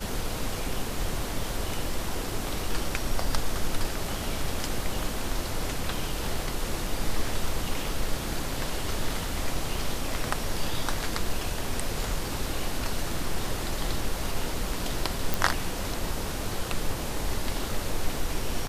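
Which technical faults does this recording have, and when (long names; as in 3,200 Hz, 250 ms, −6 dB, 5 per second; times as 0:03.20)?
0:15.34: click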